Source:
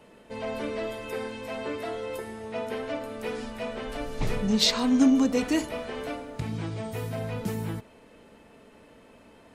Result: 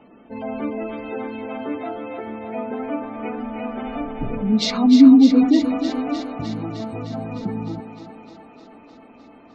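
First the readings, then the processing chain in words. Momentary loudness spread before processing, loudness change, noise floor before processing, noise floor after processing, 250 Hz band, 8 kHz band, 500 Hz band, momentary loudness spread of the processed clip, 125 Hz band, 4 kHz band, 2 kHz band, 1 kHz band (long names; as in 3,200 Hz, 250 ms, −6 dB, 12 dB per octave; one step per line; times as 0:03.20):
14 LU, +9.0 dB, −54 dBFS, −47 dBFS, +10.5 dB, can't be measured, +2.5 dB, 19 LU, +1.5 dB, 0.0 dB, 0.0 dB, +6.0 dB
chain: gate on every frequency bin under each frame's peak −20 dB strong
hollow resonant body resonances 270/760/1,200/2,200 Hz, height 13 dB, ringing for 25 ms
on a send: feedback echo with a high-pass in the loop 305 ms, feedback 75%, high-pass 300 Hz, level −6.5 dB
on the sum: level −2 dB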